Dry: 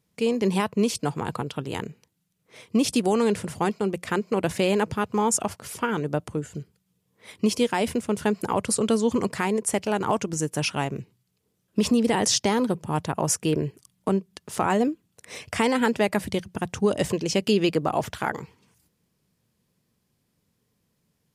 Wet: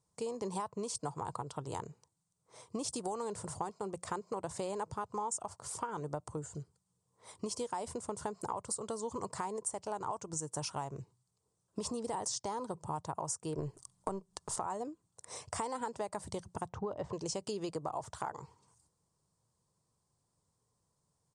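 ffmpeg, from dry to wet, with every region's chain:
-filter_complex "[0:a]asettb=1/sr,asplit=3[s0][s1][s2];[s0]atrim=end=13.584[s3];[s1]atrim=start=13.58:end=14.56,asetpts=PTS-STARTPTS,afade=t=in:d=0.004:c=qsin,afade=t=out:st=0.976:d=0.004:c=qsin,aeval=exprs='if(lt(val(0),0),0.708*val(0),val(0))':c=same,acontrast=68[s4];[s2]atrim=start=14.556[s5];[s3][s4]acrossfade=d=0.004:c1=hsin:c2=qsin[s6];[s6][s5]acrossfade=d=0.004:c1=qsin:c2=hsin,asettb=1/sr,asplit=3[s7][s8][s9];[s7]atrim=end=16.694[s10];[s8]atrim=start=16.69:end=17.13,asetpts=PTS-STARTPTS,afade=t=in:d=0.004:c=qsin,afade=t=out:st=0.436:d=0.004:c=qsin,lowpass=3200,aemphasis=mode=reproduction:type=50fm[s11];[s9]atrim=start=17.126[s12];[s10][s11]acrossfade=d=0.004:c1=hsin:c2=qsin[s13];[s13][s12]acrossfade=d=0.004:c1=qsin:c2=hsin,firequalizer=gain_entry='entry(130,0);entry(220,-10);entry(320,-4);entry(980,7);entry(1600,-7);entry(2500,-13);entry(4300,-2);entry(8700,8);entry(12000,-19)':delay=0.05:min_phase=1,acompressor=threshold=0.0355:ratio=6,volume=0.501"

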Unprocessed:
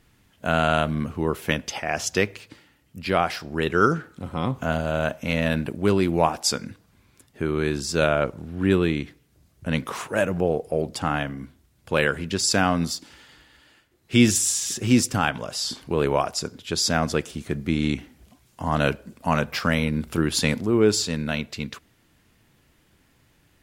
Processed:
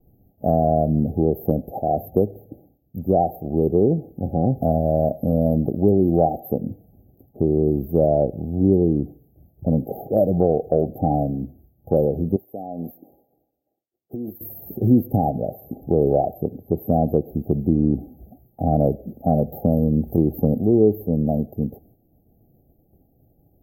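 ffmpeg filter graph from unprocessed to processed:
-filter_complex "[0:a]asettb=1/sr,asplit=3[s0][s1][s2];[s0]atrim=end=12.364[s3];[s1]atrim=start=12.36:end=14.41,asetpts=PTS-STARTPTS,afade=t=in:d=0.004:c=qsin,afade=t=out:st=2.046:d=0.004:c=qsin,highpass=f=510:p=1,acompressor=threshold=0.0282:ratio=12:attack=3.2:release=140:knee=1:detection=peak[s4];[s2]atrim=start=14.406[s5];[s3][s4]acrossfade=d=0.004:c1=hsin:c2=qsin[s6];[s6][s5]acrossfade=d=0.004:c1=qsin:c2=hsin,afftfilt=real='re*(1-between(b*sr/4096,820,12000))':imag='im*(1-between(b*sr/4096,820,12000))':win_size=4096:overlap=0.75,agate=range=0.0224:threshold=0.00141:ratio=3:detection=peak,acompressor=threshold=0.0631:ratio=2,volume=2.66"

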